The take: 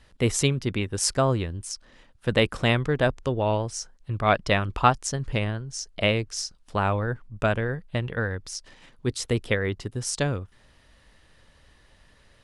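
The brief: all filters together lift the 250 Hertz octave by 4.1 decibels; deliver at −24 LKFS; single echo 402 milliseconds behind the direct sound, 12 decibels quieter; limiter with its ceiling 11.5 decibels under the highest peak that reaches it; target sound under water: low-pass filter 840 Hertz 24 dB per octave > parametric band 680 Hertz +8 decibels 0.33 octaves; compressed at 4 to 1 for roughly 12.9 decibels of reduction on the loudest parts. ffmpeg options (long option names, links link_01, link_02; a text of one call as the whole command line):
ffmpeg -i in.wav -af "equalizer=frequency=250:width_type=o:gain=5,acompressor=threshold=-30dB:ratio=4,alimiter=level_in=2.5dB:limit=-24dB:level=0:latency=1,volume=-2.5dB,lowpass=frequency=840:width=0.5412,lowpass=frequency=840:width=1.3066,equalizer=frequency=680:width_type=o:width=0.33:gain=8,aecho=1:1:402:0.251,volume=14dB" out.wav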